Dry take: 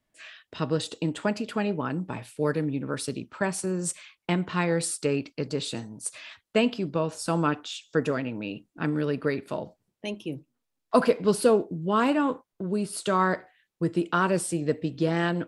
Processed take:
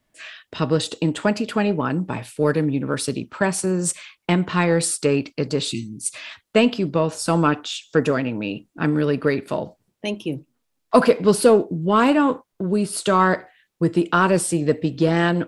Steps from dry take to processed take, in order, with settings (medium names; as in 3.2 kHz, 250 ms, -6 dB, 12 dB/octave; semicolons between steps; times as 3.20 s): spectral selection erased 5.72–6.14 s, 430–2000 Hz; in parallel at -8 dB: saturation -18.5 dBFS, distortion -13 dB; on the sum: trim +4.5 dB